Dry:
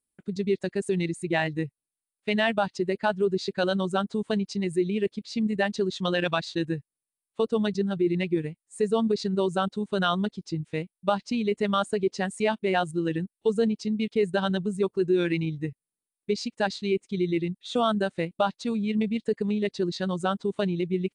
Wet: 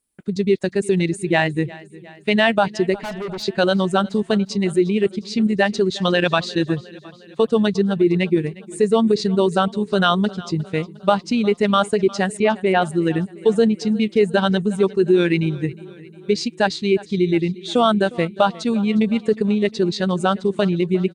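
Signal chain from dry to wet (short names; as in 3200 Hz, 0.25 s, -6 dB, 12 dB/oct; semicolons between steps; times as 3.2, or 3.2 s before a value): 2.94–3.43 tube stage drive 34 dB, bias 0.3; 12.37–12.82 air absorption 170 m; feedback echo 0.357 s, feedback 58%, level -20.5 dB; gain +8 dB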